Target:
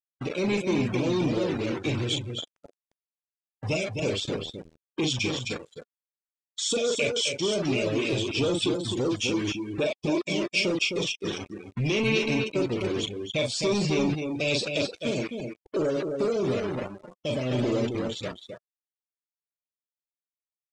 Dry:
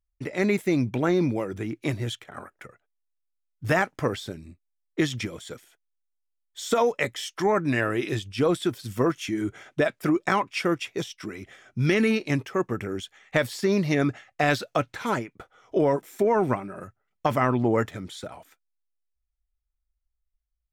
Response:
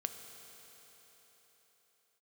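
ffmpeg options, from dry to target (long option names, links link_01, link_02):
-filter_complex "[0:a]asplit=2[link_01][link_02];[link_02]adelay=39,volume=-5.5dB[link_03];[link_01][link_03]amix=inputs=2:normalize=0,acrossover=split=2100[link_04][link_05];[link_04]alimiter=limit=-17.5dB:level=0:latency=1:release=15[link_06];[link_06][link_05]amix=inputs=2:normalize=0,asuperstop=centerf=1200:order=20:qfactor=0.73,acrusher=bits=5:mix=0:aa=0.000001,lowpass=frequency=9300:width=0.5412,lowpass=frequency=9300:width=1.3066,asoftclip=type=tanh:threshold=-23dB,tiltshelf=frequency=680:gain=-3.5,aecho=1:1:260:0.562,afftdn=noise_reduction=25:noise_floor=-39,volume=4dB"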